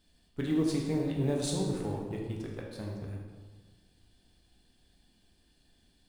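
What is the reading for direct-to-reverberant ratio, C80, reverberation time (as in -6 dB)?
-1.5 dB, 4.5 dB, 1.4 s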